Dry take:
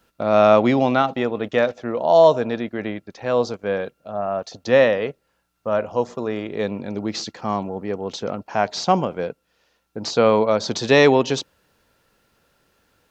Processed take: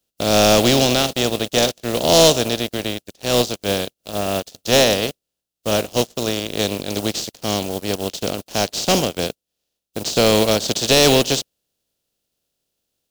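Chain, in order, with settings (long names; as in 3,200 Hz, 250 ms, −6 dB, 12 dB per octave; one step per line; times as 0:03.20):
compressing power law on the bin magnitudes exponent 0.4
leveller curve on the samples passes 3
flat-topped bell 1,400 Hz −10.5 dB
level −6 dB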